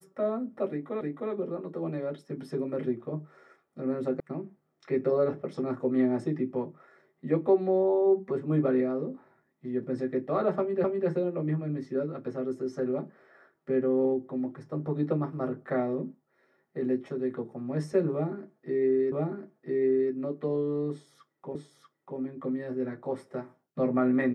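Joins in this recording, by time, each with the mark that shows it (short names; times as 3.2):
1.01 repeat of the last 0.31 s
4.2 sound cut off
10.84 repeat of the last 0.25 s
19.12 repeat of the last 1 s
21.55 repeat of the last 0.64 s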